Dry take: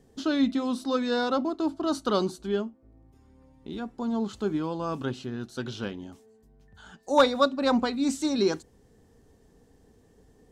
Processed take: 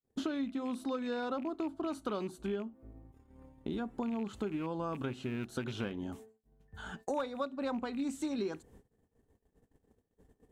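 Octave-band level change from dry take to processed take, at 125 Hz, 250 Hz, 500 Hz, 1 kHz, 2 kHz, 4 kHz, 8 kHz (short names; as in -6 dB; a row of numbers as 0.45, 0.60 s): -5.5, -8.5, -10.5, -11.5, -9.5, -14.5, -11.5 dB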